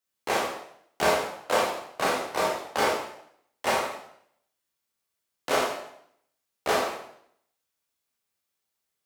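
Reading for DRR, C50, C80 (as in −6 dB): −4.5 dB, 2.0 dB, 6.0 dB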